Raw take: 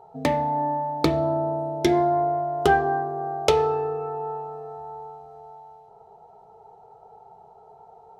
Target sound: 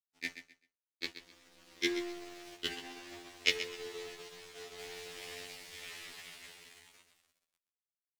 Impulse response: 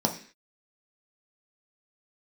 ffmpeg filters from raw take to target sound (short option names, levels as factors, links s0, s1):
-filter_complex "[0:a]acompressor=threshold=0.0158:ratio=5,acrusher=bits=8:mix=0:aa=0.000001,firequalizer=gain_entry='entry(330,0);entry(540,-16);entry(1000,-28);entry(1800,12);entry(10000,-24)':delay=0.05:min_phase=1,asplit=3[s0][s1][s2];[s0]afade=t=out:st=2.55:d=0.02[s3];[s1]flanger=delay=4.9:depth=3.7:regen=-64:speed=1.3:shape=triangular,afade=t=in:st=2.55:d=0.02,afade=t=out:st=4.78:d=0.02[s4];[s2]afade=t=in:st=4.78:d=0.02[s5];[s3][s4][s5]amix=inputs=3:normalize=0,bass=f=250:g=-14,treble=f=4000:g=10,dynaudnorm=f=240:g=17:m=5.62,aeval=exprs='sgn(val(0))*max(abs(val(0))-0.01,0)':c=same,aecho=1:1:129|258|387:0.266|0.0639|0.0153,afftfilt=real='re*2*eq(mod(b,4),0)':imag='im*2*eq(mod(b,4),0)':win_size=2048:overlap=0.75,volume=1.19"